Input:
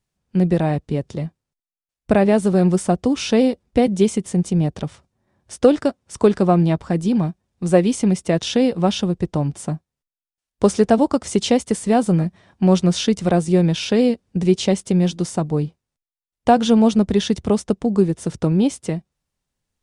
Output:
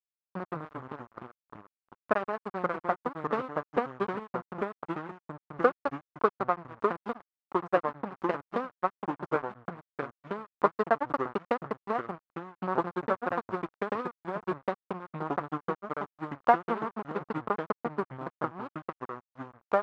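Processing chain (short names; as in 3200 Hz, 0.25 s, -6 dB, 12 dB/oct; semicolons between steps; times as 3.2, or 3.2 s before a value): transient shaper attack +9 dB, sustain -11 dB; backlash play -8 dBFS; echoes that change speed 0.129 s, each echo -3 st, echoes 2; band-pass 1200 Hz, Q 2.6; gain -3 dB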